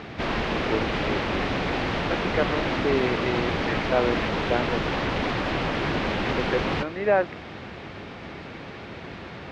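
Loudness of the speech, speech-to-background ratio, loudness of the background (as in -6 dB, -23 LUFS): -29.0 LUFS, -2.5 dB, -26.5 LUFS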